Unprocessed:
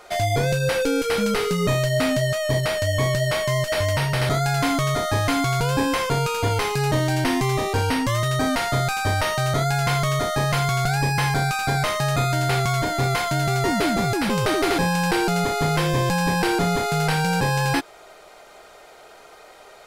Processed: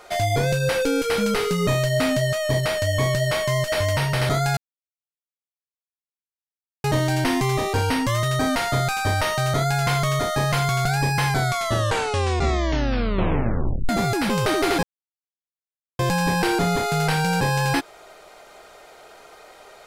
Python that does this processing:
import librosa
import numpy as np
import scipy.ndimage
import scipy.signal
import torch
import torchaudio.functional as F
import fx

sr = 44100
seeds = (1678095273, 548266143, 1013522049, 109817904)

y = fx.edit(x, sr, fx.silence(start_s=4.57, length_s=2.27),
    fx.tape_stop(start_s=11.29, length_s=2.6),
    fx.silence(start_s=14.83, length_s=1.16), tone=tone)